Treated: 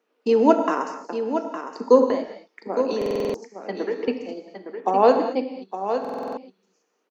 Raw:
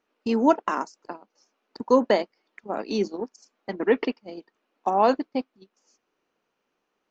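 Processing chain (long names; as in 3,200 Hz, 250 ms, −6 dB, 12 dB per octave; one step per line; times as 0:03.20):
elliptic high-pass filter 180 Hz
parametric band 460 Hz +9.5 dB 0.2 octaves
0:02.06–0:04.08: downward compressor 6 to 1, threshold −26 dBFS, peak gain reduction 17.5 dB
single-tap delay 862 ms −9 dB
reverb whose tail is shaped and stops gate 250 ms flat, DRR 5.5 dB
buffer that repeats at 0:02.97/0:06.00, samples 2,048, times 7
level +1.5 dB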